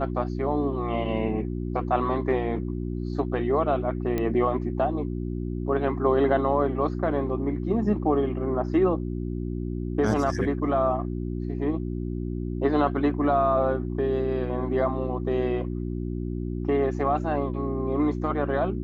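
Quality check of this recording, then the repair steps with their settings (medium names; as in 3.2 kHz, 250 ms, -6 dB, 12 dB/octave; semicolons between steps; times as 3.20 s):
hum 60 Hz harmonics 6 -30 dBFS
4.18 s: pop -15 dBFS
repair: de-click; de-hum 60 Hz, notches 6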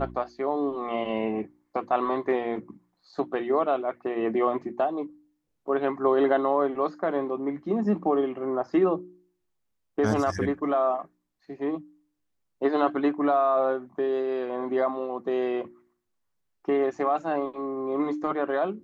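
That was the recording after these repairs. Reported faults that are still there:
nothing left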